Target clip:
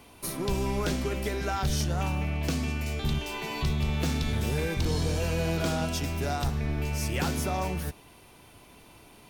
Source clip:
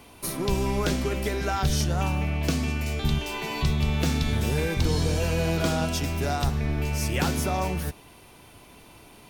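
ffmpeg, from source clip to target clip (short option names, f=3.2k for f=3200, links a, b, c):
-af "volume=18dB,asoftclip=hard,volume=-18dB,volume=-3dB"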